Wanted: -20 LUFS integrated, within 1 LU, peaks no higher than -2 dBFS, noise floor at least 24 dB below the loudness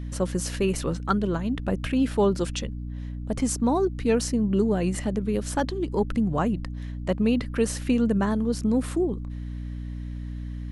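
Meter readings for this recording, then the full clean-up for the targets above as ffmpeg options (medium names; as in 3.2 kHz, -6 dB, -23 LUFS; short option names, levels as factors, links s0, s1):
hum 60 Hz; highest harmonic 300 Hz; hum level -31 dBFS; loudness -26.5 LUFS; peak level -9.0 dBFS; loudness target -20.0 LUFS
-> -af "bandreject=f=60:t=h:w=6,bandreject=f=120:t=h:w=6,bandreject=f=180:t=h:w=6,bandreject=f=240:t=h:w=6,bandreject=f=300:t=h:w=6"
-af "volume=2.11"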